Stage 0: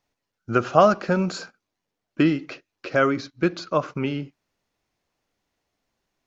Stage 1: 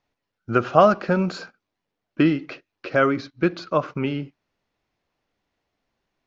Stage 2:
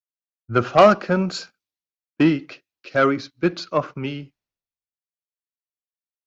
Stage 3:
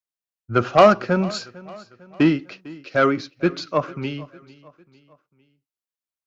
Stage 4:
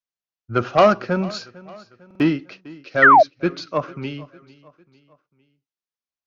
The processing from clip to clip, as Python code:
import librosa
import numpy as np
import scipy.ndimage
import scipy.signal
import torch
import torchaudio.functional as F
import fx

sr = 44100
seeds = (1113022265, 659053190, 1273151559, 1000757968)

y1 = scipy.signal.sosfilt(scipy.signal.butter(2, 4400.0, 'lowpass', fs=sr, output='sos'), x)
y1 = y1 * librosa.db_to_amplitude(1.0)
y2 = fx.high_shelf(y1, sr, hz=5800.0, db=8.0)
y2 = fx.cheby_harmonics(y2, sr, harmonics=(5,), levels_db=(-16,), full_scale_db=-1.0)
y2 = fx.band_widen(y2, sr, depth_pct=100)
y2 = y2 * librosa.db_to_amplitude(-4.5)
y3 = fx.echo_feedback(y2, sr, ms=451, feedback_pct=48, wet_db=-21.0)
y4 = fx.spec_paint(y3, sr, seeds[0], shape='fall', start_s=3.02, length_s=0.21, low_hz=580.0, high_hz=2000.0, level_db=-8.0)
y4 = scipy.signal.sosfilt(scipy.signal.butter(12, 6700.0, 'lowpass', fs=sr, output='sos'), y4)
y4 = fx.buffer_glitch(y4, sr, at_s=(2.06,), block=2048, repeats=2)
y4 = y4 * librosa.db_to_amplitude(-1.5)